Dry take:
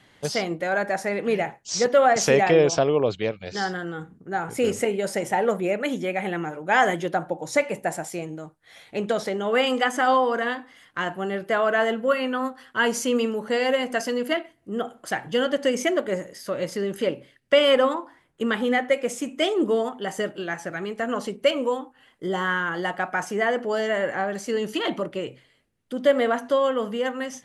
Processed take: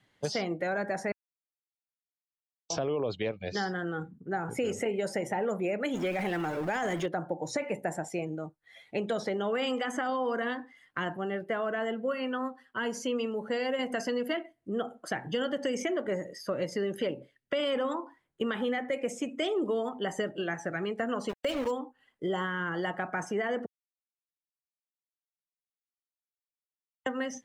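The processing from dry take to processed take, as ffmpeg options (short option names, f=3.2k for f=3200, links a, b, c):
-filter_complex "[0:a]asettb=1/sr,asplit=3[a][b][c];[a]atrim=end=5.944[d];[b]atrim=start=5.94:end=7.06,asetpts=PTS-STARTPTS,afade=t=in:d=0.004:c=qsin,afade=t=out:st=1.116:d=0.004:c=qsin,aeval=exprs='val(0)+0.5*0.0316*sgn(val(0))':c=same[e];[c]atrim=start=7.056[f];[d][e]acrossfade=d=0.004:c1=hsin:c2=qsin[g];[g][f]acrossfade=d=0.004:c1=qsin:c2=hsin,asplit=3[h][i][j];[h]afade=t=out:st=21.28:d=0.02[k];[i]aeval=exprs='val(0)*gte(abs(val(0)),0.0355)':c=same,afade=t=in:st=21.28:d=0.02,afade=t=out:st=21.7:d=0.02[l];[j]afade=t=in:st=21.7:d=0.02[m];[k][l][m]amix=inputs=3:normalize=0,asplit=7[n][o][p][q][r][s][t];[n]atrim=end=1.12,asetpts=PTS-STARTPTS,afade=t=out:st=1.116:d=0.004:c=hsin[u];[o]atrim=start=1.12:end=2.7,asetpts=PTS-STARTPTS,volume=0[v];[p]atrim=start=2.7:end=11.172,asetpts=PTS-STARTPTS,afade=t=in:d=0.004:c=hsin[w];[q]atrim=start=11.168:end=13.792,asetpts=PTS-STARTPTS,volume=-4dB[x];[r]atrim=start=13.788:end=23.66,asetpts=PTS-STARTPTS,afade=t=out:st=9.868:d=0.004:c=hsin[y];[s]atrim=start=23.66:end=27.06,asetpts=PTS-STARTPTS,volume=0[z];[t]atrim=start=27.06,asetpts=PTS-STARTPTS,afade=t=in:d=0.004:c=hsin[aa];[u][v][w]concat=n=3:v=0:a=1[ab];[ab][x]acrossfade=d=0.004:c1=hsin:c2=hsin[ac];[y][z][aa]concat=n=3:v=0:a=1[ad];[ac][ad]acrossfade=d=0.004:c1=hsin:c2=hsin,afftdn=nr=14:nf=-43,alimiter=limit=-16dB:level=0:latency=1:release=16,acrossover=split=400|5500[ae][af][ag];[ae]acompressor=threshold=-34dB:ratio=4[ah];[af]acompressor=threshold=-32dB:ratio=4[ai];[ag]acompressor=threshold=-50dB:ratio=4[aj];[ah][ai][aj]amix=inputs=3:normalize=0"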